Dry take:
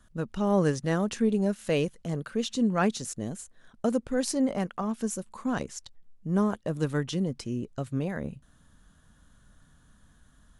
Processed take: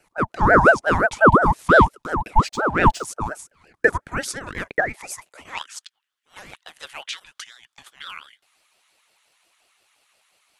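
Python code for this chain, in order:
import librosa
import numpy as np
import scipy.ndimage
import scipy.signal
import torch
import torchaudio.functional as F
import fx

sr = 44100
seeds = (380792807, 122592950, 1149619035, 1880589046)

y = fx.filter_sweep_highpass(x, sr, from_hz=420.0, to_hz=2300.0, start_s=3.24, end_s=5.77, q=6.2)
y = fx.backlash(y, sr, play_db=-44.0, at=(2.48, 3.05))
y = fx.ring_lfo(y, sr, carrier_hz=770.0, swing_pct=45, hz=5.7)
y = y * librosa.db_to_amplitude(5.5)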